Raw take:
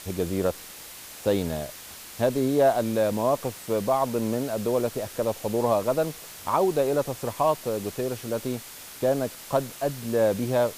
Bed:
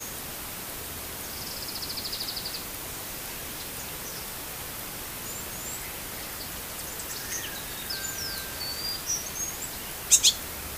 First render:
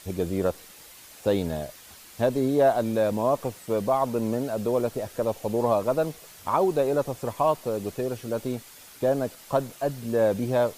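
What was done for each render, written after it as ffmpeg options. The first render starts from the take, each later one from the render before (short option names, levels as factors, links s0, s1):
-af "afftdn=nr=7:nf=-43"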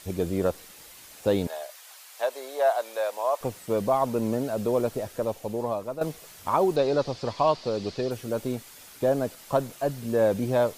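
-filter_complex "[0:a]asettb=1/sr,asplit=3[s0][s1][s2];[s0]atrim=end=1.474[s3];[s1]atrim=start=1.47:end=3.41,asetpts=PTS-STARTPTS,afade=t=in:d=0.004:c=qsin,afade=t=out:st=1.936:d=0.004:c=qsin,highpass=f=590:w=0.5412,highpass=f=590:w=1.3066[s4];[s2]atrim=start=3.406[s5];[s3][s4]acrossfade=d=0.004:c1=hsin:c2=qsin[s6];[s6][s5]acrossfade=d=0.004:c1=qsin:c2=hsin,asettb=1/sr,asplit=3[s7][s8][s9];[s7]atrim=end=6.764[s10];[s8]atrim=start=6.76:end=8.11,asetpts=PTS-STARTPTS,afade=t=in:d=0.004:c=qsin,afade=t=out:st=1.346:d=0.004:c=qsin,lowpass=f=4600:t=q:w=3.8[s11];[s9]atrim=start=8.106[s12];[s10][s11]acrossfade=d=0.004:c1=hsin:c2=qsin[s13];[s13][s12]acrossfade=d=0.004:c1=qsin:c2=hsin,asplit=2[s14][s15];[s14]atrim=end=6.01,asetpts=PTS-STARTPTS,afade=t=out:st=4.95:d=1.06:silence=0.281838[s16];[s15]atrim=start=6.01,asetpts=PTS-STARTPTS,afade=t=in:d=0.004:c=hsin:silence=0.281838[s17];[s16][s17]concat=n=2:v=0:a=1"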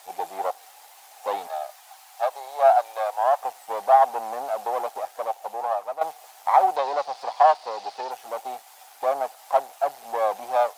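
-af "aeval=exprs='if(lt(val(0),0),0.251*val(0),val(0))':c=same,highpass=f=770:t=q:w=9.4"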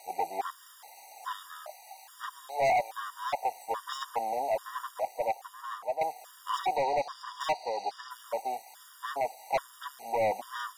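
-af "asoftclip=type=hard:threshold=0.0708,afftfilt=real='re*gt(sin(2*PI*1.2*pts/sr)*(1-2*mod(floor(b*sr/1024/950),2)),0)':imag='im*gt(sin(2*PI*1.2*pts/sr)*(1-2*mod(floor(b*sr/1024/950),2)),0)':win_size=1024:overlap=0.75"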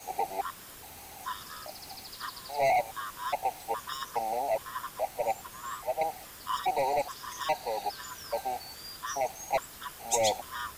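-filter_complex "[1:a]volume=0.237[s0];[0:a][s0]amix=inputs=2:normalize=0"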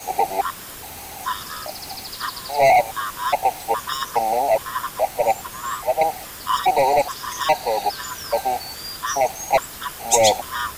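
-af "volume=3.76"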